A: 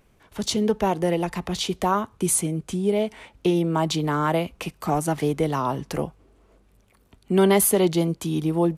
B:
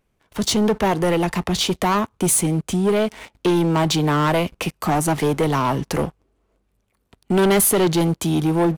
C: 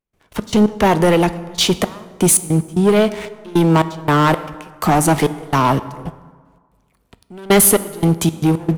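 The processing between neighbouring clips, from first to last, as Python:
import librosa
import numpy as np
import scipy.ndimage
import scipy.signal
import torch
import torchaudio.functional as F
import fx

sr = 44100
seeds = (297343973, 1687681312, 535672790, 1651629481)

y1 = fx.leveller(x, sr, passes=3)
y1 = y1 * librosa.db_to_amplitude(-3.5)
y2 = fx.step_gate(y1, sr, bpm=114, pattern='.xx.x.xxxx..xx.', floor_db=-24.0, edge_ms=4.5)
y2 = fx.rev_plate(y2, sr, seeds[0], rt60_s=1.6, hf_ratio=0.6, predelay_ms=0, drr_db=13.5)
y2 = y2 * librosa.db_to_amplitude(5.5)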